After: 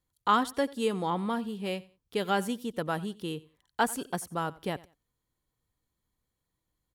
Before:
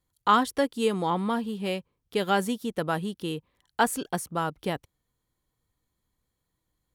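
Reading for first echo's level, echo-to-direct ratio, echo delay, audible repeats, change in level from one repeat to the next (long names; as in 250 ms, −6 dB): −21.0 dB, −21.0 dB, 90 ms, 2, −12.5 dB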